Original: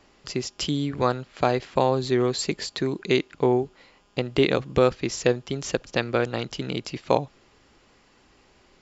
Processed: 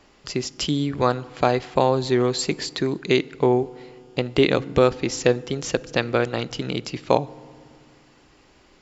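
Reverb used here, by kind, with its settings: FDN reverb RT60 2 s, low-frequency decay 1.55×, high-frequency decay 0.45×, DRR 19.5 dB; trim +2.5 dB

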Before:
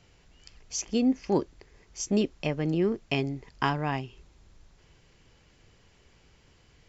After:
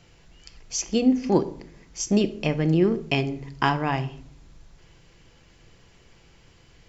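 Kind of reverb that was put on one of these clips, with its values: simulated room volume 1000 m³, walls furnished, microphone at 0.75 m; trim +4.5 dB

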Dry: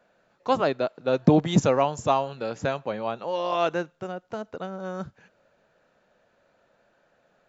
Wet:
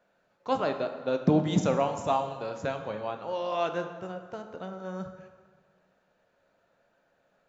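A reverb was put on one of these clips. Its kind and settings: plate-style reverb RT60 1.6 s, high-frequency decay 0.65×, DRR 5.5 dB; trim -6 dB

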